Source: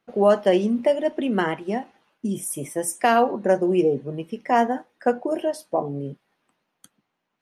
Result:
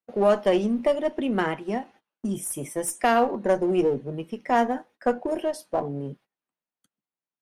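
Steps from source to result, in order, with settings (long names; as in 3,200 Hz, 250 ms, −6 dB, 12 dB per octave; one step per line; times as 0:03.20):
noise gate −48 dBFS, range −21 dB
in parallel at −4 dB: asymmetric clip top −28 dBFS
on the sum: level −5.5 dB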